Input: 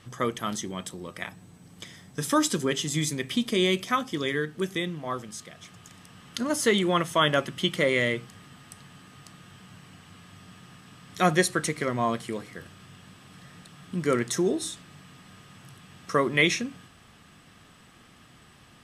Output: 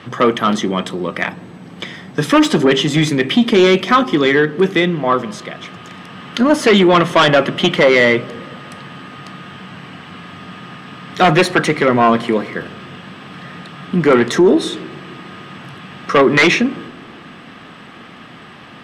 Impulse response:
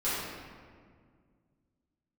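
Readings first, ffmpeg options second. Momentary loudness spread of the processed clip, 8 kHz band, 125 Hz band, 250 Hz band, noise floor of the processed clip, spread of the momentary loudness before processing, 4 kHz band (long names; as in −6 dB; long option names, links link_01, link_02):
22 LU, +2.0 dB, +11.5 dB, +14.0 dB, −38 dBFS, 16 LU, +10.5 dB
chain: -filter_complex "[0:a]aeval=exprs='0.422*sin(PI/2*3.16*val(0)/0.422)':channel_layout=same,acrossover=split=150 3800:gain=0.158 1 0.1[link_01][link_02][link_03];[link_01][link_02][link_03]amix=inputs=3:normalize=0,asplit=2[link_04][link_05];[1:a]atrim=start_sample=2205,lowpass=1100[link_06];[link_05][link_06]afir=irnorm=-1:irlink=0,volume=-27dB[link_07];[link_04][link_07]amix=inputs=2:normalize=0,acontrast=39,volume=-1dB"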